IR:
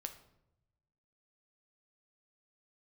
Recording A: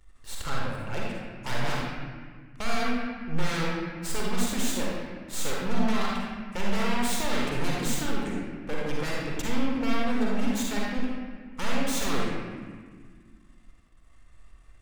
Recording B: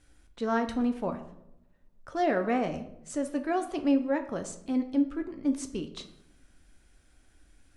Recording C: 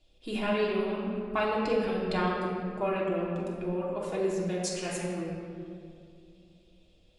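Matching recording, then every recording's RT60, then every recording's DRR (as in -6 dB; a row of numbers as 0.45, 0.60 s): B; 1.7, 0.85, 2.4 s; -4.0, 6.5, -5.0 dB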